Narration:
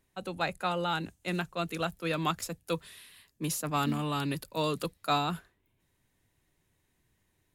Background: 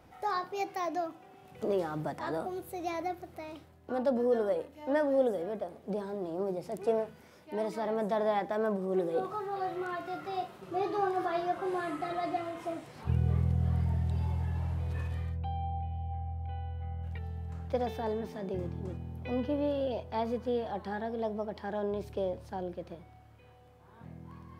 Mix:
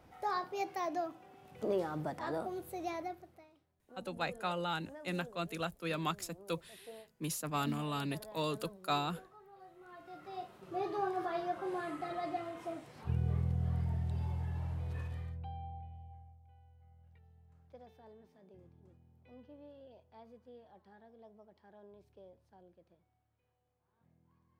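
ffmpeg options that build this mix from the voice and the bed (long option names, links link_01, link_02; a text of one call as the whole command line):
ffmpeg -i stem1.wav -i stem2.wav -filter_complex "[0:a]adelay=3800,volume=-5.5dB[link_01];[1:a]volume=14dB,afade=type=out:start_time=2.81:duration=0.69:silence=0.112202,afade=type=in:start_time=9.8:duration=0.99:silence=0.141254,afade=type=out:start_time=14.93:duration=1.48:silence=0.11885[link_02];[link_01][link_02]amix=inputs=2:normalize=0" out.wav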